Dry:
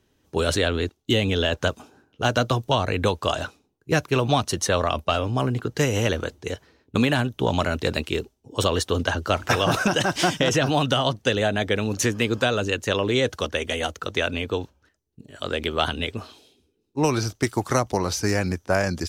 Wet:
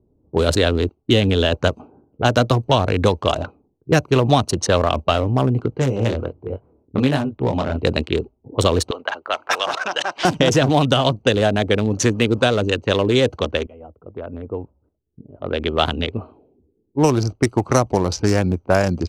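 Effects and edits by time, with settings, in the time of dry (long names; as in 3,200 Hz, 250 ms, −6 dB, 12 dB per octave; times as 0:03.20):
0:05.70–0:07.84: chorus effect 1.3 Hz, delay 20 ms, depth 6.7 ms
0:08.91–0:10.25: high-pass filter 860 Hz
0:13.67–0:15.77: fade in, from −21 dB
whole clip: adaptive Wiener filter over 25 samples; low-pass that shuts in the quiet parts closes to 600 Hz, open at −20 dBFS; dynamic equaliser 1,900 Hz, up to −3 dB, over −35 dBFS, Q 0.91; level +6.5 dB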